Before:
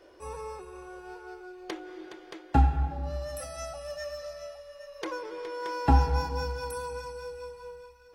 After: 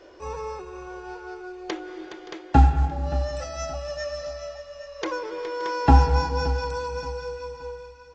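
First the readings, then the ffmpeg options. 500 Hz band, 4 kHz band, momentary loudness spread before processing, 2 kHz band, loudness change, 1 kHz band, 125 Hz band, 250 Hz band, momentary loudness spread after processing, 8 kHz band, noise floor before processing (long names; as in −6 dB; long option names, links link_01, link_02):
+6.0 dB, +6.0 dB, 20 LU, +6.0 dB, +6.0 dB, +6.0 dB, +6.0 dB, +6.0 dB, 20 LU, +3.5 dB, −54 dBFS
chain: -af "aecho=1:1:573|1146|1719:0.141|0.0438|0.0136,volume=6dB" -ar 16000 -c:a pcm_mulaw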